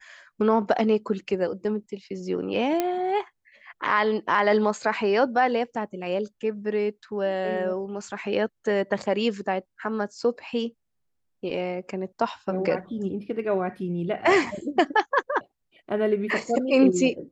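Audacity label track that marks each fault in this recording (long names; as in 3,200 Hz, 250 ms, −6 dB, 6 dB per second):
2.800000	2.800000	click −10 dBFS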